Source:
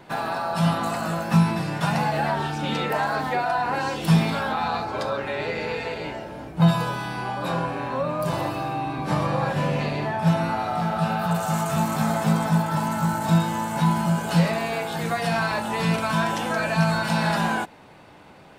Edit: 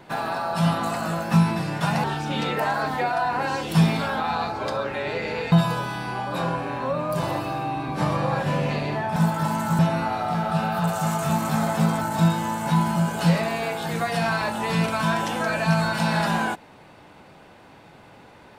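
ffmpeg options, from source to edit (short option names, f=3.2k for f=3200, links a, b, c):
-filter_complex "[0:a]asplit=6[a][b][c][d][e][f];[a]atrim=end=2.042[g];[b]atrim=start=2.368:end=5.852[h];[c]atrim=start=6.618:end=10.262[i];[d]atrim=start=12.478:end=13.112[j];[e]atrim=start=10.258:end=12.482[k];[f]atrim=start=13.108[l];[g][h]acrossfade=d=0.004:c1=hsin:c2=hsin[m];[m][i]acrossfade=d=0.004:c1=hsin:c2=hsin[n];[n][j]acrossfade=d=0.004:c1=hsin:c2=hsin[o];[o][k]acrossfade=d=0.004:c1=hsin:c2=hsin[p];[p][l]acrossfade=d=0.004:c1=hsin:c2=hsin"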